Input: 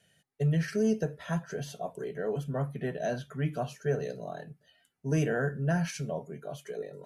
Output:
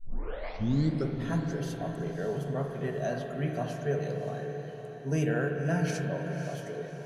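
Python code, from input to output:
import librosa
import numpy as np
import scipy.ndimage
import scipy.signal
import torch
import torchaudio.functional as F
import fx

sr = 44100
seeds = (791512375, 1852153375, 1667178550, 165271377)

y = fx.tape_start_head(x, sr, length_s=1.2)
y = fx.echo_diffused(y, sr, ms=579, feedback_pct=43, wet_db=-9.0)
y = fx.rev_spring(y, sr, rt60_s=3.5, pass_ms=(42, 58), chirp_ms=35, drr_db=4.0)
y = F.gain(torch.from_numpy(y), -1.5).numpy()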